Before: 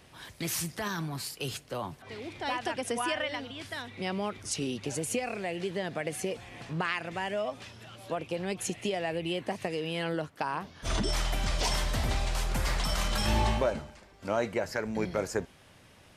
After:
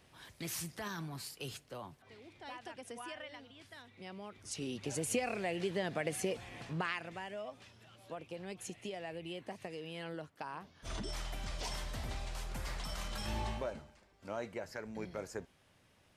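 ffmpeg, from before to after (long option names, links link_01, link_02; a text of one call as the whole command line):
ffmpeg -i in.wav -af "volume=4.5dB,afade=type=out:start_time=1.39:duration=0.82:silence=0.446684,afade=type=in:start_time=4.28:duration=0.88:silence=0.237137,afade=type=out:start_time=6.47:duration=0.8:silence=0.354813" out.wav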